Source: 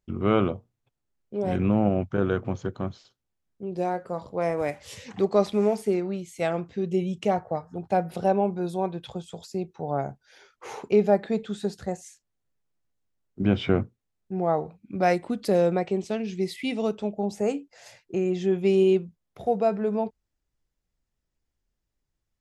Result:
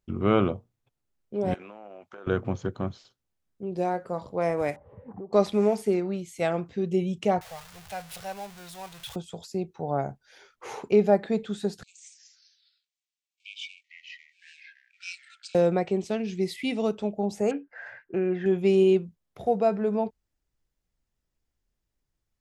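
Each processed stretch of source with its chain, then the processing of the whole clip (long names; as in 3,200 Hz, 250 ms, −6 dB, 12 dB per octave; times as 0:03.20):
0:01.54–0:02.27: high-pass filter 600 Hz + downward compressor 10 to 1, threshold −40 dBFS
0:04.76–0:05.33: low-pass filter 1,000 Hz 24 dB per octave + downward compressor, threshold −36 dBFS
0:07.41–0:09.16: converter with a step at zero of −33.5 dBFS + guitar amp tone stack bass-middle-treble 10-0-10
0:11.83–0:15.55: gain on one half-wave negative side −7 dB + linear-phase brick-wall band-pass 2,200–8,900 Hz + delay with pitch and tempo change per echo 145 ms, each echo −3 semitones, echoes 3, each echo −6 dB
0:17.51–0:18.46: low-pass with resonance 1,600 Hz, resonance Q 13 + low-shelf EQ 150 Hz −6.5 dB
whole clip: no processing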